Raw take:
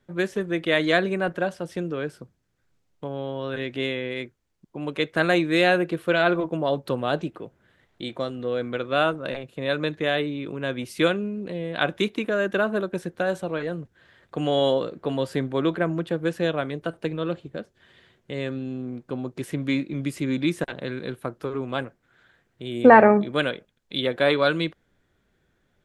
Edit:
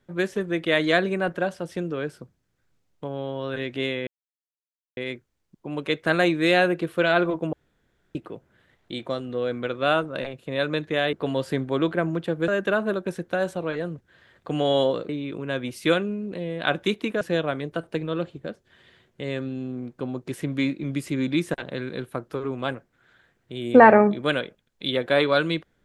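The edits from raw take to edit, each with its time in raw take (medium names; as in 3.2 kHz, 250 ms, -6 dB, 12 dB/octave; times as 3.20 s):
4.07 s: insert silence 0.90 s
6.63–7.25 s: room tone
10.23–12.35 s: swap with 14.96–16.31 s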